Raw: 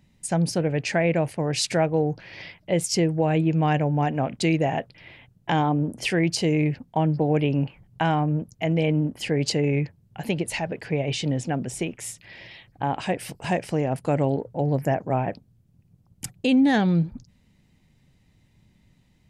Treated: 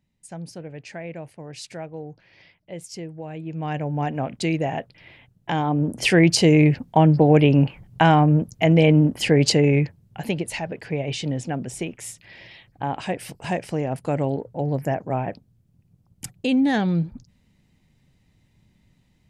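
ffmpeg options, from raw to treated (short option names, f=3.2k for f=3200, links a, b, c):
-af "volume=7dB,afade=t=in:st=3.41:d=0.65:silence=0.266073,afade=t=in:st=5.63:d=0.53:silence=0.375837,afade=t=out:st=9.34:d=1.13:silence=0.398107"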